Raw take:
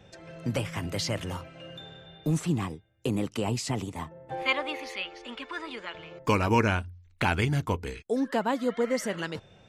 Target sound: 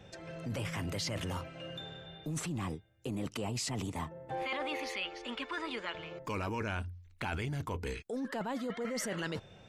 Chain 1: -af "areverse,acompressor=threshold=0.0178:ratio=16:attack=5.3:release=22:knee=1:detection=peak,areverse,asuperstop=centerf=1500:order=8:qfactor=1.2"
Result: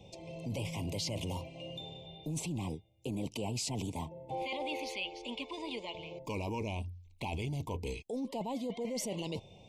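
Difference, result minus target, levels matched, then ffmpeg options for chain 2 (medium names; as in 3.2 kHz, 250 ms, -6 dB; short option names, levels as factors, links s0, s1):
2 kHz band -4.5 dB
-af "areverse,acompressor=threshold=0.0178:ratio=16:attack=5.3:release=22:knee=1:detection=peak,areverse"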